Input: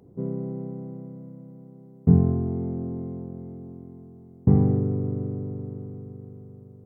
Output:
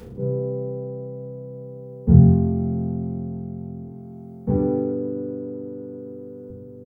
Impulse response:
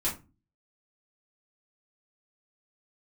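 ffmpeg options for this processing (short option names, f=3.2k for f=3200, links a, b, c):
-filter_complex "[0:a]asettb=1/sr,asplit=3[a][b][c];[a]atrim=end=3.854[d];[b]atrim=start=3.85:end=6.5,asetpts=PTS-STARTPTS,afade=t=in:d=0.004:c=qsin,afade=t=out:st=2.646:d=0.004:c=qsin,highpass=f=300:p=1[e];[c]atrim=start=6.496[f];[d][e]acrossfade=d=0.004:c1=hsin:c2=qsin[g];[g][f]acrossfade=d=0.004:c1=qsin:c2=hsin,acompressor=mode=upward:threshold=-34dB:ratio=2.5,aecho=1:1:30|64.5|104.2|149.8|202.3:0.631|0.398|0.251|0.158|0.1[h];[1:a]atrim=start_sample=2205,asetrate=61740,aresample=44100[i];[h][i]afir=irnorm=-1:irlink=0,volume=-3.5dB"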